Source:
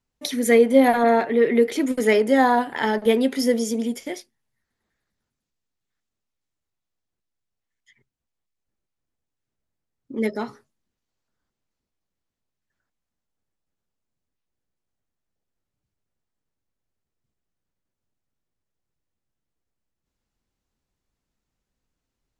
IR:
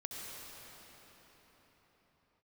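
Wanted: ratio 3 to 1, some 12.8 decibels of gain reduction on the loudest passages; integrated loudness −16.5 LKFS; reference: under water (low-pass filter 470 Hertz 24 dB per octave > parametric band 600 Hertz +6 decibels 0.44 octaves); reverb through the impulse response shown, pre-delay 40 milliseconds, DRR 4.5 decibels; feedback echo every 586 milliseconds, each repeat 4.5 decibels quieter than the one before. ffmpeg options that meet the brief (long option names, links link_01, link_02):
-filter_complex "[0:a]acompressor=threshold=-28dB:ratio=3,aecho=1:1:586|1172|1758|2344|2930|3516|4102|4688|5274:0.596|0.357|0.214|0.129|0.0772|0.0463|0.0278|0.0167|0.01,asplit=2[link_01][link_02];[1:a]atrim=start_sample=2205,adelay=40[link_03];[link_02][link_03]afir=irnorm=-1:irlink=0,volume=-4.5dB[link_04];[link_01][link_04]amix=inputs=2:normalize=0,lowpass=frequency=470:width=0.5412,lowpass=frequency=470:width=1.3066,equalizer=frequency=600:width_type=o:width=0.44:gain=6,volume=14dB"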